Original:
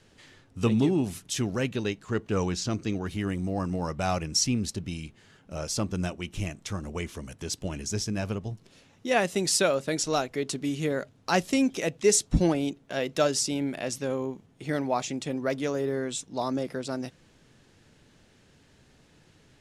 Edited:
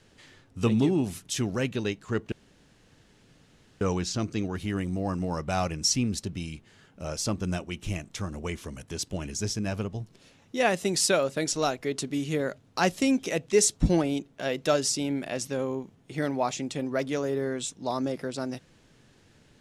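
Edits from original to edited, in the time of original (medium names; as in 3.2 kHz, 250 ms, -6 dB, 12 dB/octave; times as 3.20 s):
2.32 s: insert room tone 1.49 s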